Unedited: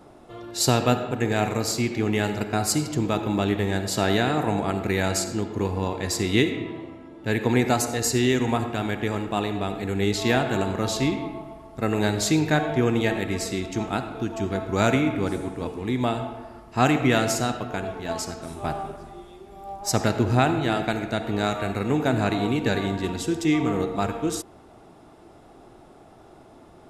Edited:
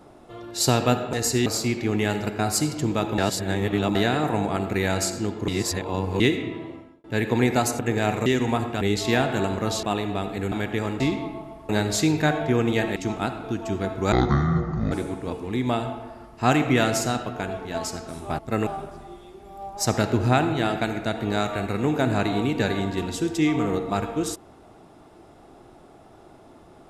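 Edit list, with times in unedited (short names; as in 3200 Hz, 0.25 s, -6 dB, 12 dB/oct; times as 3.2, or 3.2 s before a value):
1.13–1.6 swap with 7.93–8.26
3.32–4.09 reverse
5.62–6.34 reverse
6.89–7.18 fade out
8.81–9.29 swap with 9.98–11
11.69–11.97 move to 18.73
13.24–13.67 cut
14.83–15.26 speed 54%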